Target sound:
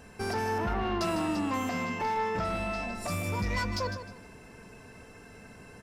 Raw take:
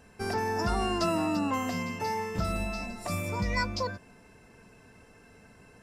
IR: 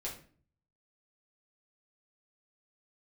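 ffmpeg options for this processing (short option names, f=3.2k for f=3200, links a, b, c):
-filter_complex "[0:a]asettb=1/sr,asplit=3[a][b][c];[a]atrim=end=0.584[d];[b]atrim=start=0.58:end=1.01,asetpts=PTS-STARTPTS,afade=t=in:d=0.004:c=qsin,afade=t=out:st=0.426:d=0.004:c=qsin,lowpass=f=2.6k:w=0.5412,lowpass=f=2.6k:w=1.3066[e];[c]atrim=start=1.006[f];[d][e]acrossfade=d=0.004:c1=hsin:c2=qsin[g];[g][f]acrossfade=d=0.004:c1=qsin:c2=hsin,asplit=2[h][i];[i]acompressor=threshold=-41dB:ratio=6,volume=-2dB[j];[h][j]amix=inputs=2:normalize=0,asettb=1/sr,asplit=3[k][l][m];[k]atrim=end=1.694[n];[l]atrim=start=1.69:end=2.95,asetpts=PTS-STARTPTS,afade=t=in:d=0.004:c=qsin,afade=t=out:st=1.256:d=0.004:c=qsin,asplit=2[o][p];[p]highpass=f=720:p=1,volume=13dB,asoftclip=type=tanh:threshold=-16.5dB[q];[o][q]amix=inputs=2:normalize=0,lowpass=f=1.3k:p=1,volume=-6dB[r];[m]atrim=start=2.946[s];[n][r]acrossfade=d=0.004:c1=hsin:c2=qsin[t];[t][s]acrossfade=d=0.004:c1=qsin:c2=hsin,asoftclip=type=tanh:threshold=-25.5dB,aecho=1:1:154|308|462:0.299|0.0746|0.0187"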